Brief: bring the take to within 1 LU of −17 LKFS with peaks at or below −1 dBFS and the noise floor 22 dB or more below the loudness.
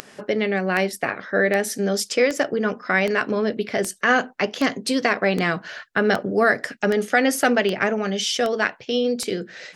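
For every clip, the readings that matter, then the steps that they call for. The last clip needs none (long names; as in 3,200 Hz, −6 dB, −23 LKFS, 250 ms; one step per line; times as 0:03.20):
number of clicks 13; integrated loudness −22.0 LKFS; sample peak −5.0 dBFS; target loudness −17.0 LKFS
→ click removal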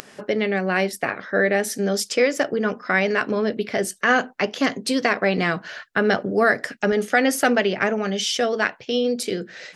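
number of clicks 1; integrated loudness −22.0 LKFS; sample peak −5.0 dBFS; target loudness −17.0 LKFS
→ level +5 dB
brickwall limiter −1 dBFS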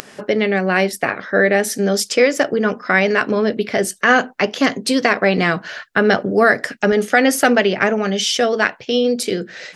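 integrated loudness −17.0 LKFS; sample peak −1.0 dBFS; background noise floor −44 dBFS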